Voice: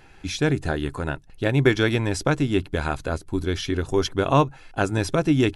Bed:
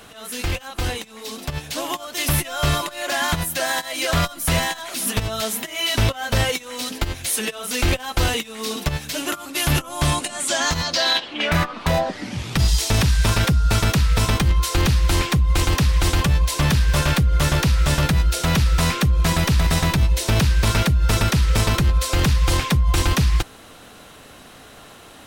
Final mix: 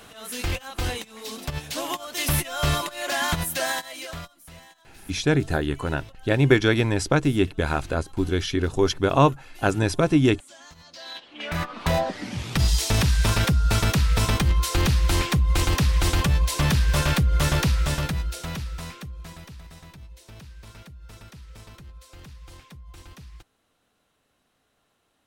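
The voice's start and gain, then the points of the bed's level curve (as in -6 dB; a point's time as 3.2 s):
4.85 s, +1.0 dB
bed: 3.69 s -3 dB
4.5 s -26.5 dB
10.79 s -26.5 dB
11.82 s -3 dB
17.64 s -3 dB
19.7 s -27 dB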